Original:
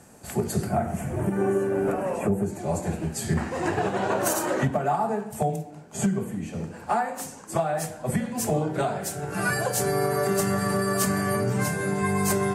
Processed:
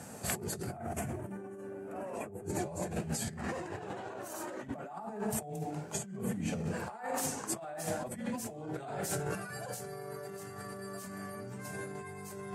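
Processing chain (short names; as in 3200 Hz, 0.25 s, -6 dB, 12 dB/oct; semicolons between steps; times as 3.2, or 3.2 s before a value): HPF 81 Hz; negative-ratio compressor -36 dBFS, ratio -1; flange 0.31 Hz, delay 1.3 ms, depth 2.4 ms, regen -67%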